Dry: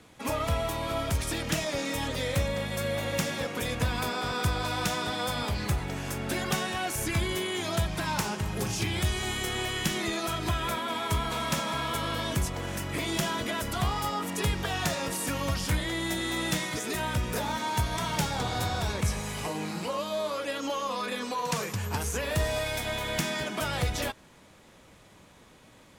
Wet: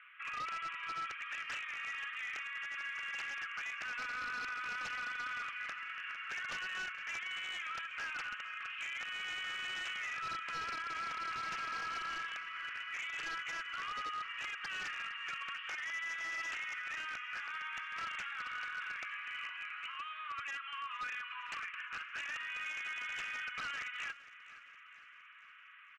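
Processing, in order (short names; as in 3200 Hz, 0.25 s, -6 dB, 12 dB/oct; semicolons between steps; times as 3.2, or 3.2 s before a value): Chebyshev band-pass 1200–2900 Hz, order 4; comb 6.1 ms, depth 36%; compressor 1.5:1, threshold -55 dBFS, peak gain reduction 9 dB; wavefolder -40 dBFS; air absorption 56 m; on a send: feedback echo 0.462 s, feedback 54%, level -17 dB; on the sum: gain +5.5 dB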